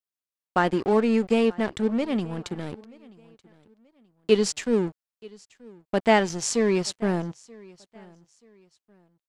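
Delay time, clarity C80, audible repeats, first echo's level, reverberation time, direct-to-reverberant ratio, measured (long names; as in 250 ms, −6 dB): 931 ms, no reverb audible, 2, −24.0 dB, no reverb audible, no reverb audible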